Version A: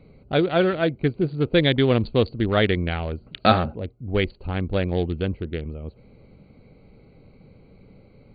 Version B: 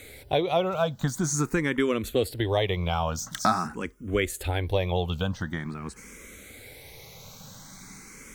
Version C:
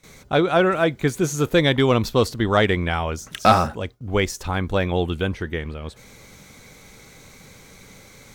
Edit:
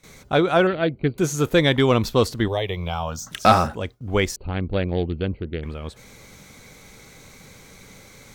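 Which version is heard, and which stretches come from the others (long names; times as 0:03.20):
C
0:00.67–0:01.18: punch in from A
0:02.48–0:03.31: punch in from B
0:04.36–0:05.63: punch in from A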